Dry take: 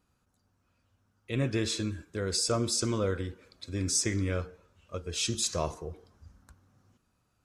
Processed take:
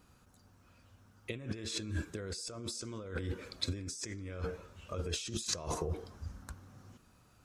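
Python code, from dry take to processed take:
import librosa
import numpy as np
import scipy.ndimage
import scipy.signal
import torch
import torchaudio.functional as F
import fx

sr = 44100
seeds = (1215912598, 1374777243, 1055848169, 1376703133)

y = fx.over_compress(x, sr, threshold_db=-41.0, ratio=-1.0)
y = y * librosa.db_to_amplitude(1.0)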